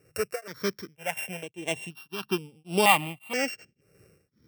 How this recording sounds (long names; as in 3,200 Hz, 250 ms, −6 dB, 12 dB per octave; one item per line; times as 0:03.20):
a buzz of ramps at a fixed pitch in blocks of 16 samples
tremolo triangle 1.8 Hz, depth 100%
notches that jump at a steady rate 2.1 Hz 900–6,400 Hz